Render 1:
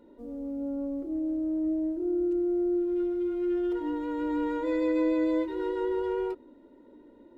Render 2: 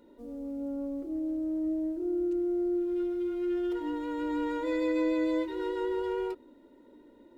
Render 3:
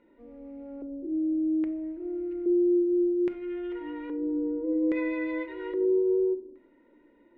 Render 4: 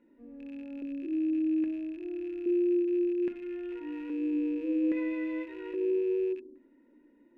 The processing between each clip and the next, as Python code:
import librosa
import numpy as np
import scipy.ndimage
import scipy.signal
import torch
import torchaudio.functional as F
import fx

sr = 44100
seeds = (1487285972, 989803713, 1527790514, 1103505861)

y1 = fx.high_shelf(x, sr, hz=2100.0, db=8.0)
y1 = y1 * librosa.db_to_amplitude(-2.5)
y2 = fx.filter_lfo_lowpass(y1, sr, shape='square', hz=0.61, low_hz=390.0, high_hz=2200.0, q=3.7)
y2 = fx.room_shoebox(y2, sr, seeds[0], volume_m3=840.0, walls='furnished', distance_m=0.74)
y2 = y2 * librosa.db_to_amplitude(-5.5)
y3 = fx.rattle_buzz(y2, sr, strikes_db=-48.0, level_db=-40.0)
y3 = fx.small_body(y3, sr, hz=(250.0, 1700.0, 2600.0), ring_ms=30, db=11)
y3 = y3 * librosa.db_to_amplitude(-8.0)